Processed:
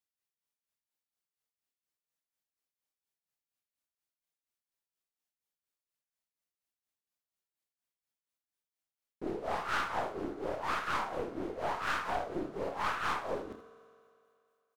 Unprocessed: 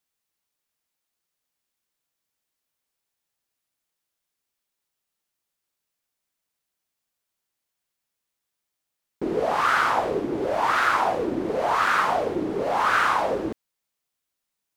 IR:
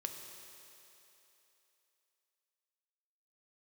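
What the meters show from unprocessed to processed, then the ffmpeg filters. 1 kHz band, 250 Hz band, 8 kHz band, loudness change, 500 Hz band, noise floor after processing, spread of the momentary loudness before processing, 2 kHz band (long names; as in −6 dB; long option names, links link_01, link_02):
−13.0 dB, −12.0 dB, −11.5 dB, −13.0 dB, −12.0 dB, below −85 dBFS, 7 LU, −13.0 dB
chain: -filter_complex "[0:a]tremolo=f=4.2:d=0.8,aecho=1:1:29|79:0.376|0.282,asplit=2[link_01][link_02];[1:a]atrim=start_sample=2205,asetrate=52920,aresample=44100,adelay=65[link_03];[link_02][link_03]afir=irnorm=-1:irlink=0,volume=-11dB[link_04];[link_01][link_04]amix=inputs=2:normalize=0,aeval=exprs='(tanh(10*val(0)+0.6)-tanh(0.6))/10':channel_layout=same,volume=-6.5dB"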